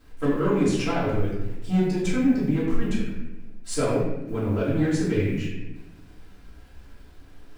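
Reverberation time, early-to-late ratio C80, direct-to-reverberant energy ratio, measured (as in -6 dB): 1.0 s, 3.5 dB, -10.0 dB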